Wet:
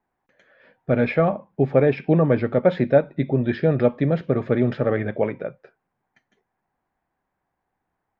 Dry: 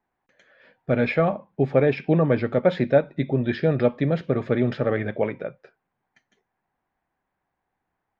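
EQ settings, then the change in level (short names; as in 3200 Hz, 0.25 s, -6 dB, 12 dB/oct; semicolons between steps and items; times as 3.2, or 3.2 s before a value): high shelf 3200 Hz -9 dB; +2.0 dB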